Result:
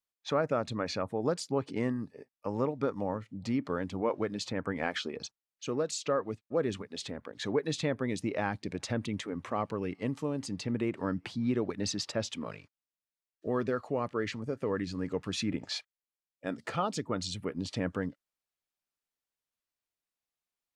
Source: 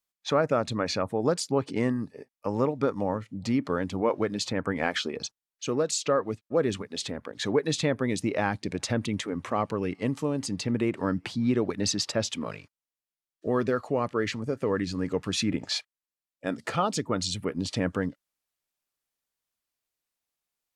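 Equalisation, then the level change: high shelf 7000 Hz -6 dB; -5.0 dB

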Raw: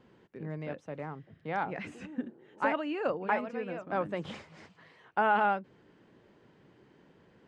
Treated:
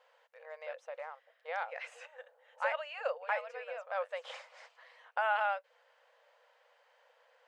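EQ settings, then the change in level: dynamic EQ 880 Hz, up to -6 dB, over -42 dBFS, Q 1.1; brick-wall FIR high-pass 470 Hz; 0.0 dB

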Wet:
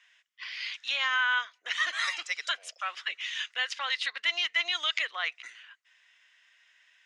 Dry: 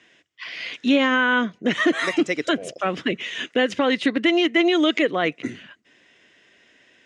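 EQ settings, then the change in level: HPF 1000 Hz 24 dB/oct; dynamic EQ 4700 Hz, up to +8 dB, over -44 dBFS, Q 1.5; -6.0 dB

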